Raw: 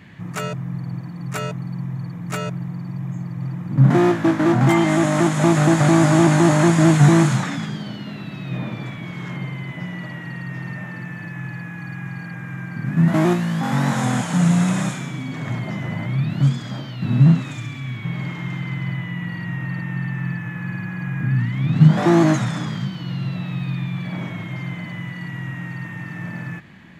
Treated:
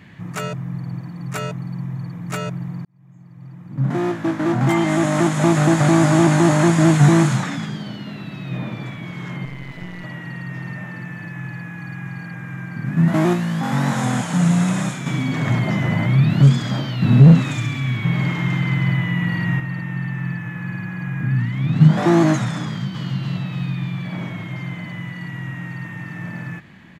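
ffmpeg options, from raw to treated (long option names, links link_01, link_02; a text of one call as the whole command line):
ffmpeg -i in.wav -filter_complex "[0:a]asettb=1/sr,asplit=3[link_01][link_02][link_03];[link_01]atrim=end=9.454[link_04];[link_02]atrim=start=9.45:end=10.04,asetpts=PTS-STARTPTS,afade=type=in:duration=0.004:curve=qsin,afade=type=out:start_time=0.586:duration=0.004:curve=qsin,aeval=exprs='if(lt(val(0),0),0.251*val(0),val(0))':channel_layout=same[link_05];[link_03]atrim=start=10.036[link_06];[link_04][link_05]acrossfade=duration=0.004:curve1=hsin:curve2=qsin[link_07];[link_07][link_06]acrossfade=duration=0.004:curve1=qsin:curve2=hsin,asettb=1/sr,asplit=3[link_08][link_09][link_10];[link_08]atrim=end=15.064[link_11];[link_09]atrim=start=15.06:end=19.6,asetpts=PTS-STARTPTS,afade=type=in:duration=0.004:curve=qsin,afade=type=out:start_time=4.536:duration=0.004:curve=qsin,acontrast=80[link_12];[link_10]atrim=start=19.596[link_13];[link_11][link_12]acrossfade=duration=0.004:curve1=hsin:curve2=qsin[link_14];[link_14][link_13]acrossfade=duration=0.004:curve1=qsin:curve2=hsin,asplit=2[link_15][link_16];[link_16]afade=type=in:start_time=22.65:duration=0.01,afade=type=out:start_time=23.08:duration=0.01,aecho=0:1:290|580|870|1160|1450|1740|2030|2320|2610:0.630957|0.378574|0.227145|0.136287|0.0817721|0.0490632|0.0294379|0.0176628|0.0105977[link_17];[link_15][link_17]amix=inputs=2:normalize=0,asplit=2[link_18][link_19];[link_18]atrim=end=2.85,asetpts=PTS-STARTPTS,afade=type=out:start_time=2.846:duration=0.004:curve=hsin[link_20];[link_19]atrim=start=2.85,asetpts=PTS-STARTPTS,afade=type=in:duration=2.31[link_21];[link_20][link_21]concat=n=2:v=0:a=1" out.wav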